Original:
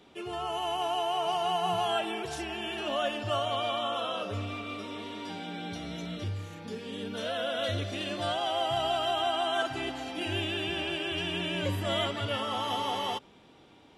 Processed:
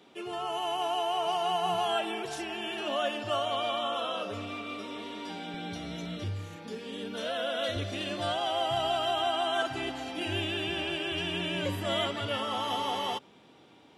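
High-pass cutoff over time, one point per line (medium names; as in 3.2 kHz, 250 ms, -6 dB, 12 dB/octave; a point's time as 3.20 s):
160 Hz
from 5.54 s 52 Hz
from 6.56 s 180 Hz
from 7.76 s 55 Hz
from 11.58 s 110 Hz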